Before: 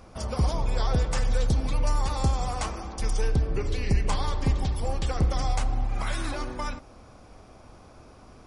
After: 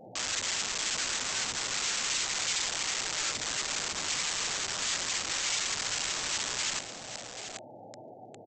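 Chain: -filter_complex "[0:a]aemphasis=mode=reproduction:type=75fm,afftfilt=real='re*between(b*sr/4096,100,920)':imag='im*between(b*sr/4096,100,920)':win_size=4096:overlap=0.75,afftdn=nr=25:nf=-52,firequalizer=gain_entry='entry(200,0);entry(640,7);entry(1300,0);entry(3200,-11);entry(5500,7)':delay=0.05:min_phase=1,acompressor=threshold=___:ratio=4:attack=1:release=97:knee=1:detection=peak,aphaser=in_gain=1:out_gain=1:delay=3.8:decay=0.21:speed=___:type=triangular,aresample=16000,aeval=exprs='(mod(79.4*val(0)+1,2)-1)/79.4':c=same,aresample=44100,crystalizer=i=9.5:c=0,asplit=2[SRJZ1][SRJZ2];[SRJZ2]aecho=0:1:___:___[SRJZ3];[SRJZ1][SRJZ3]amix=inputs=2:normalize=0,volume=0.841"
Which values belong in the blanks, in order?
0.0141, 0.44, 783, 0.316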